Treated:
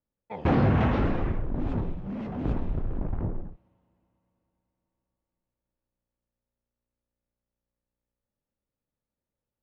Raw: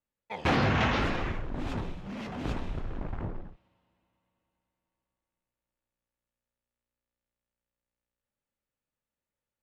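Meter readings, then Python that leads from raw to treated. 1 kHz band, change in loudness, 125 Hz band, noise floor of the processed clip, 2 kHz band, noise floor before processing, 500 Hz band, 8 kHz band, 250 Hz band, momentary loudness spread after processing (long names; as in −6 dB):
−1.0 dB, +3.0 dB, +6.0 dB, below −85 dBFS, −6.0 dB, below −85 dBFS, +3.0 dB, can't be measured, +5.0 dB, 13 LU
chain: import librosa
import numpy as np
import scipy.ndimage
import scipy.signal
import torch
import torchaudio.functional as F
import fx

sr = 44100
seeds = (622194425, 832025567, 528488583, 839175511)

y = fx.lowpass(x, sr, hz=2100.0, slope=6)
y = fx.tilt_shelf(y, sr, db=6.0, hz=920.0)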